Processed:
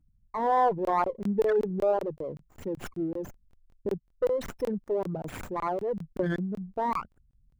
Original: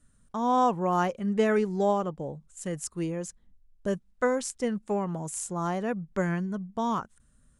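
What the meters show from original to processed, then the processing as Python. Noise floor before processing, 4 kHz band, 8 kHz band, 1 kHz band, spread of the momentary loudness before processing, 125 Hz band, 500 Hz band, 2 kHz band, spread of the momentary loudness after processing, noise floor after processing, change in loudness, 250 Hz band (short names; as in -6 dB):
-64 dBFS, -6.0 dB, -16.5 dB, 0.0 dB, 12 LU, -3.5 dB, +1.0 dB, -4.5 dB, 13 LU, -69 dBFS, -1.0 dB, -4.0 dB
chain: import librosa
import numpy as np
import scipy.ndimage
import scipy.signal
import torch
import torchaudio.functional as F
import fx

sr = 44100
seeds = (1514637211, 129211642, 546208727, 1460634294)

y = fx.envelope_sharpen(x, sr, power=3.0)
y = fx.buffer_crackle(y, sr, first_s=0.85, period_s=0.19, block=1024, kind='zero')
y = fx.running_max(y, sr, window=5)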